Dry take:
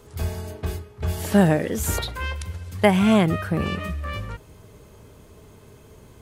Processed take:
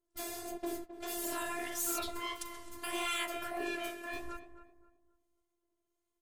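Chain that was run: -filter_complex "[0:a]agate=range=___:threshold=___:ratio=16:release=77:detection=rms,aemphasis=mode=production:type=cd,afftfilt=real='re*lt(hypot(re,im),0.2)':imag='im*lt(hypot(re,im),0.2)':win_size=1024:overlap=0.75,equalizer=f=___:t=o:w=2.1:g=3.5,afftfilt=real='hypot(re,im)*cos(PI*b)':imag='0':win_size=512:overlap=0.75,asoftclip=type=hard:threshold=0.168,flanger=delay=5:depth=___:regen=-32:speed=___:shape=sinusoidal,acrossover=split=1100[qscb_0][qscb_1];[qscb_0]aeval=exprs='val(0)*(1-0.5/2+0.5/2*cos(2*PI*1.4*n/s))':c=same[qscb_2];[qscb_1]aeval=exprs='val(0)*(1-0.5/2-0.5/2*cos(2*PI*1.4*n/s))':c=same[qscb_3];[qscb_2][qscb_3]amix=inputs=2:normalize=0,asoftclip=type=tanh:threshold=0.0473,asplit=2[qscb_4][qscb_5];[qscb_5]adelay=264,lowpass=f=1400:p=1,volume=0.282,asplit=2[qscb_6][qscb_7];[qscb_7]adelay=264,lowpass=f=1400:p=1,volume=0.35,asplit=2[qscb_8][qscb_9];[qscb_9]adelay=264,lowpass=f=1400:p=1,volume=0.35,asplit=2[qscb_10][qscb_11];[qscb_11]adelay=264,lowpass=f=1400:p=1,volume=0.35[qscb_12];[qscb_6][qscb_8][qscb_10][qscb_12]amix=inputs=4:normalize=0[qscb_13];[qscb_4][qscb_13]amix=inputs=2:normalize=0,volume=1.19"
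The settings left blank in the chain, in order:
0.0251, 0.0141, 550, 8.8, 1.6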